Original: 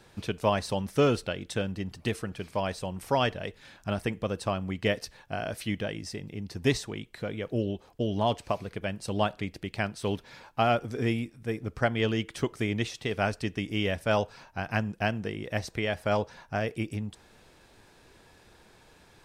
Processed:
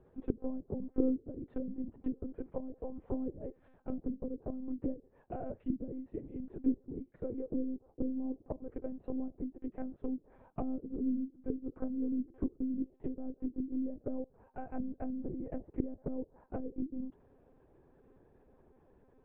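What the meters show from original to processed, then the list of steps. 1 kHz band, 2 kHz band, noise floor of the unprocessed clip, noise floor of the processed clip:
-20.0 dB, under -30 dB, -58 dBFS, -67 dBFS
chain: ladder band-pass 340 Hz, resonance 30%; treble ducked by the level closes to 320 Hz, closed at -40.5 dBFS; monotone LPC vocoder at 8 kHz 260 Hz; gain +9 dB

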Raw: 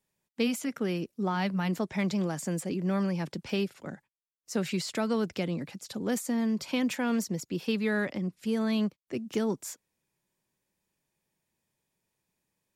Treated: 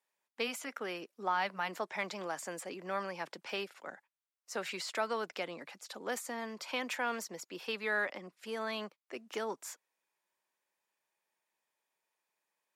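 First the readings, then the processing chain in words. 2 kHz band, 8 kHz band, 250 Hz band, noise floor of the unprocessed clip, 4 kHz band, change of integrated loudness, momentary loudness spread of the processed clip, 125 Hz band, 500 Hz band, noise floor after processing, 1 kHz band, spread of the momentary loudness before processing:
0.0 dB, -5.5 dB, -18.0 dB, -83 dBFS, -3.0 dB, -7.5 dB, 13 LU, -21.5 dB, -6.0 dB, under -85 dBFS, +0.5 dB, 8 LU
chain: HPF 850 Hz 12 dB/oct; high shelf 2300 Hz -11.5 dB; gain +5 dB

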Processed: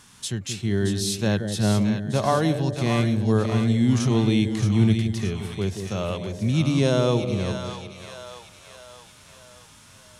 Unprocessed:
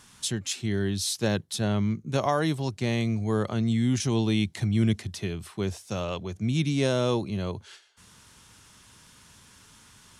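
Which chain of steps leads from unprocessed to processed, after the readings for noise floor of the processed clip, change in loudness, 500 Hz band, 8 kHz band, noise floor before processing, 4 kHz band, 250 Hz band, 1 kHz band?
-50 dBFS, +4.5 dB, +4.0 dB, +1.5 dB, -55 dBFS, +2.5 dB, +5.0 dB, +3.5 dB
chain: split-band echo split 650 Hz, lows 0.178 s, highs 0.624 s, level -7 dB; harmonic-percussive split harmonic +6 dB; gain -1.5 dB

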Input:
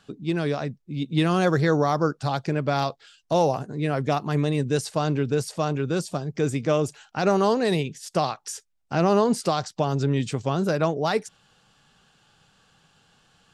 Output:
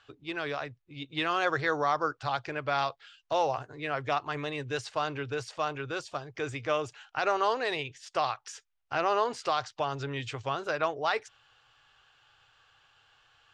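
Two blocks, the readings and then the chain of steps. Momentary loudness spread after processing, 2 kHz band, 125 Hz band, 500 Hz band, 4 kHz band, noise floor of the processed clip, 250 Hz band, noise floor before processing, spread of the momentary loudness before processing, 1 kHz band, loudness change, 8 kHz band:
9 LU, 0.0 dB, -16.0 dB, -8.0 dB, -3.0 dB, -73 dBFS, -15.5 dB, -66 dBFS, 8 LU, -2.5 dB, -7.0 dB, -10.5 dB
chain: EQ curve 120 Hz 0 dB, 190 Hz -24 dB, 280 Hz -7 dB, 1200 Hz +7 dB, 3000 Hz +7 dB, 4300 Hz +1 dB, 7000 Hz -3 dB, 11000 Hz -18 dB; gain -7 dB

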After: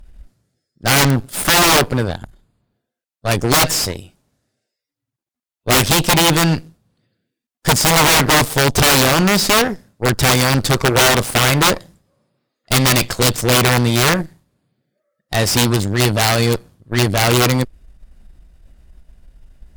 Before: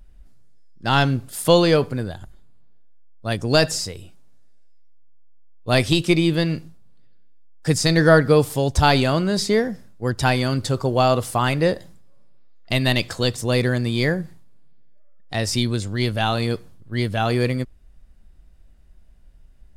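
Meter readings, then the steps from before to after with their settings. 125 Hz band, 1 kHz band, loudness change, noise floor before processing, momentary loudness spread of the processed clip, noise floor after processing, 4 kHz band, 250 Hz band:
+4.0 dB, +6.5 dB, +6.0 dB, -48 dBFS, 11 LU, -85 dBFS, +9.0 dB, +3.0 dB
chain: wrapped overs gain 13 dB; added harmonics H 8 -15 dB, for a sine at -13 dBFS; gain +6.5 dB

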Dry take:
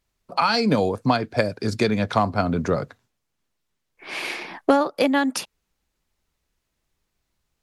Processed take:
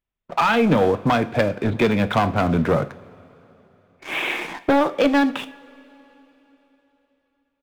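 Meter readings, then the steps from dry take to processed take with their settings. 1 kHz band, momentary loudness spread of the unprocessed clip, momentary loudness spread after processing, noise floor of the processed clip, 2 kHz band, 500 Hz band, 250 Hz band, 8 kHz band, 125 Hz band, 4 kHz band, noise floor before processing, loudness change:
+2.0 dB, 10 LU, 9 LU, -75 dBFS, +3.5 dB, +2.5 dB, +3.0 dB, -5.5 dB, +3.0 dB, -1.0 dB, -78 dBFS, +2.5 dB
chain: downsampling 8000 Hz; sample leveller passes 3; two-slope reverb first 0.39 s, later 3.8 s, from -20 dB, DRR 10.5 dB; gain -6 dB

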